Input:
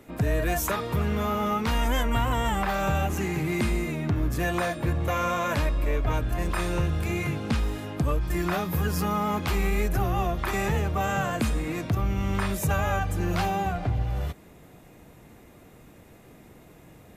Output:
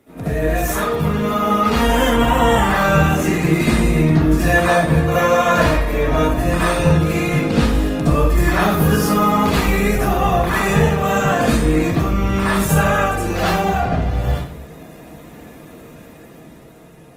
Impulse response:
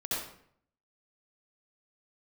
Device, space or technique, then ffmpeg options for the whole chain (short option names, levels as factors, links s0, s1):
far-field microphone of a smart speaker: -filter_complex "[1:a]atrim=start_sample=2205[s0];[0:a][s0]afir=irnorm=-1:irlink=0,highpass=f=89:p=1,dynaudnorm=f=300:g=9:m=2,volume=1.19" -ar 48000 -c:a libopus -b:a 20k